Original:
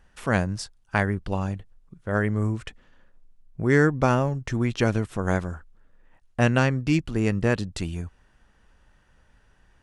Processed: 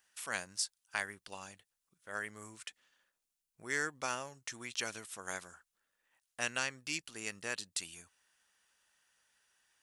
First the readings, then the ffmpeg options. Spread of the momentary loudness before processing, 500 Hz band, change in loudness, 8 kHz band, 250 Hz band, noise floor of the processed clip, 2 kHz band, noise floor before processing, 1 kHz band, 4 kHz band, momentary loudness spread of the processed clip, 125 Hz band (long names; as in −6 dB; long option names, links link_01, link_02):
15 LU, −20.5 dB, −14.5 dB, +2.0 dB, −26.5 dB, below −85 dBFS, −9.5 dB, −61 dBFS, −14.5 dB, −3.0 dB, 14 LU, −32.5 dB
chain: -af "aderivative,volume=2.5dB" -ar 44100 -c:a aac -b:a 192k